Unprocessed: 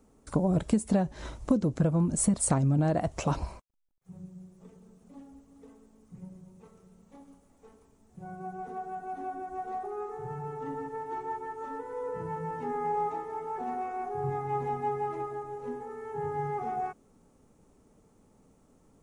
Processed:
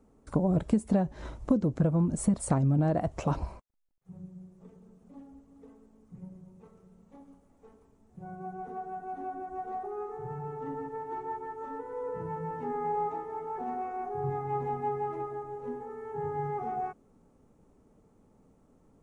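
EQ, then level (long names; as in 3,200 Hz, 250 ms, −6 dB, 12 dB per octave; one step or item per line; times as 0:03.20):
high-shelf EQ 2,400 Hz −9.5 dB
0.0 dB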